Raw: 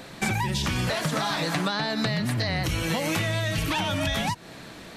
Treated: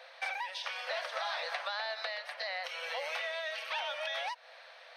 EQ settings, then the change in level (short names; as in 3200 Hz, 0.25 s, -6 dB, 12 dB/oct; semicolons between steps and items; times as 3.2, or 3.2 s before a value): polynomial smoothing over 15 samples; rippled Chebyshev high-pass 500 Hz, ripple 3 dB; -6.5 dB